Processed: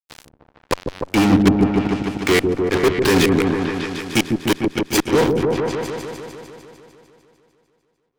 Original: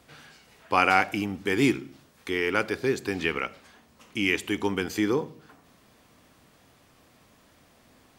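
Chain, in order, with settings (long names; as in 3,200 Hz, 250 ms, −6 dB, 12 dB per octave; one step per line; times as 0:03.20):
0:00.78–0:03.05: low-pass filter 3,200 Hz
gate with flip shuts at −15 dBFS, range −32 dB
fuzz pedal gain 39 dB, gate −42 dBFS
echo whose low-pass opens from repeat to repeat 150 ms, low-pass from 400 Hz, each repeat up 1 octave, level 0 dB
level +1.5 dB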